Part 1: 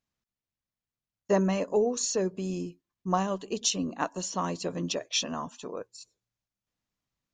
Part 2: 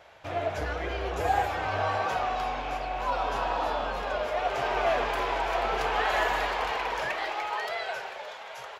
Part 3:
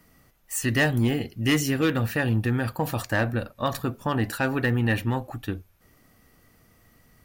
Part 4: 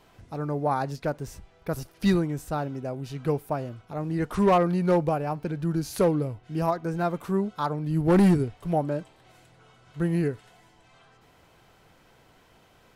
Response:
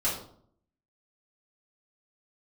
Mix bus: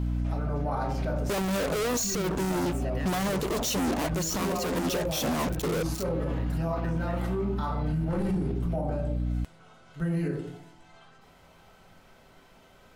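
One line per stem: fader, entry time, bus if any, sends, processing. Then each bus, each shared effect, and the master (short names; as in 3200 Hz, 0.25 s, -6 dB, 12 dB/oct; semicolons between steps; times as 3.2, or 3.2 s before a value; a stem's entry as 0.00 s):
0.0 dB, 0.00 s, bus A, no send, bell 390 Hz +10.5 dB 2.6 oct; fuzz box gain 41 dB, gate -42 dBFS; high shelf 8100 Hz +9.5 dB
-12.0 dB, 0.00 s, bus B, send -8.5 dB, compressor, threshold -29 dBFS, peak gain reduction 9 dB; tremolo saw up 0.94 Hz, depth 70%
-17.0 dB, 2.20 s, bus A, no send, dry
-4.0 dB, 0.00 s, bus B, send -6.5 dB, dry
bus A: 0.0 dB, hum 60 Hz, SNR 10 dB; limiter -14 dBFS, peak gain reduction 10.5 dB
bus B: 0.0 dB, vocal rider 2 s; limiter -31.5 dBFS, peak gain reduction 18.5 dB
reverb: on, RT60 0.60 s, pre-delay 3 ms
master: limiter -21.5 dBFS, peak gain reduction 15 dB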